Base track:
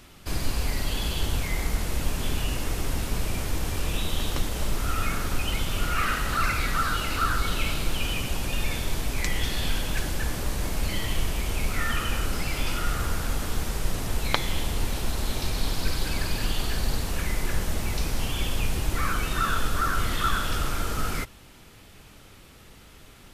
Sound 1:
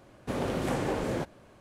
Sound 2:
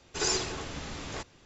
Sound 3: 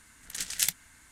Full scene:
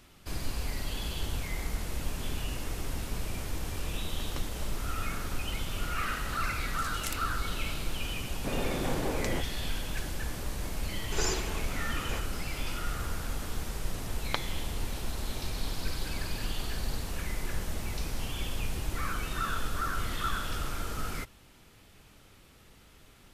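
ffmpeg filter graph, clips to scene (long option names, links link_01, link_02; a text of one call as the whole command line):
ffmpeg -i bed.wav -i cue0.wav -i cue1.wav -i cue2.wav -filter_complex "[0:a]volume=-7dB[link_01];[1:a]asoftclip=type=tanh:threshold=-23dB[link_02];[2:a]equalizer=frequency=4900:width_type=o:width=0.77:gain=-5[link_03];[3:a]atrim=end=1.11,asetpts=PTS-STARTPTS,volume=-12dB,afade=type=in:duration=0.004:curve=hsin,afade=type=out:start_time=1.106:duration=0.004:curve=hsin,adelay=6440[link_04];[link_02]atrim=end=1.6,asetpts=PTS-STARTPTS,volume=-1.5dB,afade=type=in:duration=0.004:curve=hsin,afade=type=out:start_time=1.596:duration=0.004:curve=hsin,adelay=8170[link_05];[link_03]atrim=end=1.45,asetpts=PTS-STARTPTS,volume=-1.5dB,afade=type=in:duration=0.004:curve=hsin,afade=type=out:start_time=1.446:duration=0.004:curve=hsin,adelay=10970[link_06];[link_01][link_04][link_05][link_06]amix=inputs=4:normalize=0" out.wav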